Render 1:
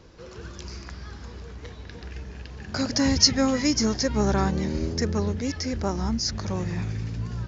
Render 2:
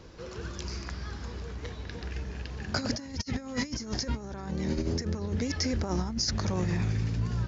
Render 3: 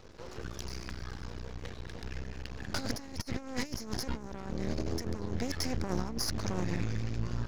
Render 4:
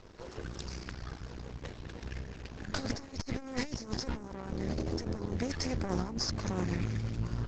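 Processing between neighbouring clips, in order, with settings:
compressor whose output falls as the input rises −28 dBFS, ratio −0.5; level −2 dB
half-wave rectification
level +1.5 dB; Opus 12 kbit/s 48,000 Hz

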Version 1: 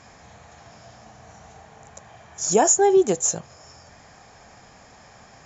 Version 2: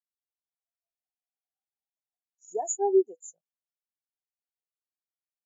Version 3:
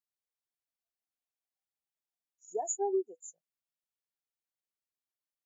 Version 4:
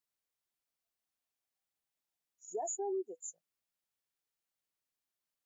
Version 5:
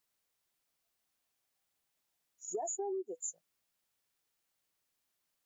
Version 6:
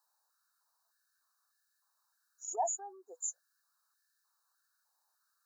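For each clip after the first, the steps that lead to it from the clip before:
high-pass filter 490 Hz 6 dB per octave; every bin expanded away from the loudest bin 2.5 to 1; level −7 dB
downward compressor 4 to 1, threshold −25 dBFS, peak gain reduction 8 dB; level −3 dB
brickwall limiter −34 dBFS, peak gain reduction 11 dB; level +3 dB
downward compressor 6 to 1, threshold −43 dBFS, peak gain reduction 9.5 dB; level +7.5 dB
linear-phase brick-wall band-stop 1,800–3,700 Hz; high-pass on a step sequencer 3.3 Hz 870–1,800 Hz; level +2.5 dB

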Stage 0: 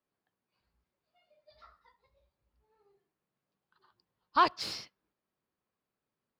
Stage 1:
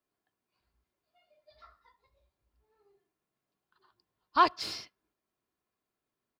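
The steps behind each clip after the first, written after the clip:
comb filter 2.9 ms, depth 32%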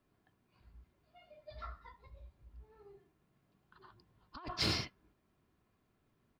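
bass and treble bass +12 dB, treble −9 dB
compressor whose output falls as the input rises −40 dBFS, ratio −1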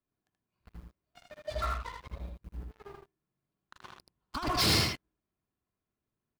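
leveller curve on the samples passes 5
on a send: single-tap delay 79 ms −4 dB
on the sum: level −4.5 dB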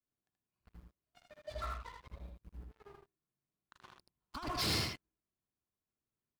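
pitch vibrato 0.4 Hz 13 cents
level −8 dB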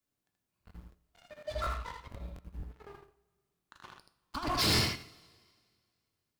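coupled-rooms reverb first 0.48 s, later 2 s, from −18 dB, DRR 9 dB
regular buffer underruns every 0.24 s, samples 1,024, repeat, from 0:00.42
level +6 dB

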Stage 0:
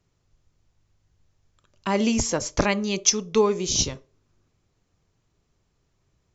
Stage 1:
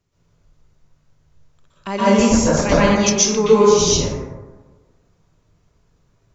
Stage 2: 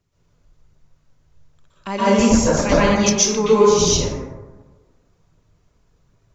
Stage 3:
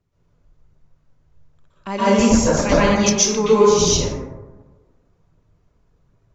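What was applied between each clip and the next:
dense smooth reverb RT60 1.3 s, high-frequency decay 0.35×, pre-delay 110 ms, DRR −10 dB; level −2 dB
phase shifter 1.3 Hz, delay 4.2 ms, feedback 24%; level −1 dB
one half of a high-frequency compander decoder only

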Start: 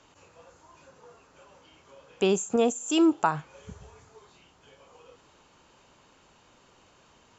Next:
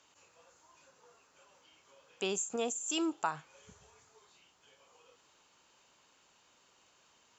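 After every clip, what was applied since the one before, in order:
spectral tilt +2.5 dB per octave
level −9 dB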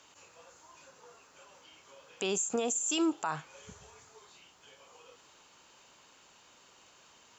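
brickwall limiter −28.5 dBFS, peak gain reduction 10.5 dB
level +7 dB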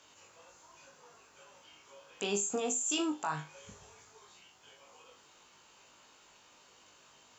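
flutter between parallel walls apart 3.4 metres, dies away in 0.23 s
level −2.5 dB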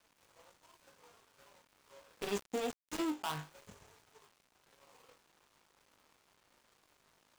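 gap after every zero crossing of 0.2 ms
level −2 dB

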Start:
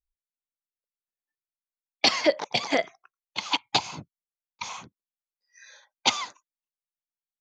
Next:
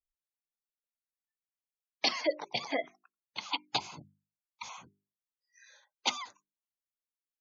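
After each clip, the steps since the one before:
mains-hum notches 50/100/150/200/250/300/350/400 Hz
gate on every frequency bin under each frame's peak −20 dB strong
level −8 dB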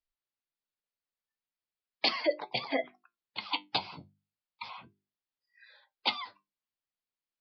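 flanger 0.37 Hz, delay 7.4 ms, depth 3.9 ms, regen +65%
downsampling to 11,025 Hz
level +5.5 dB

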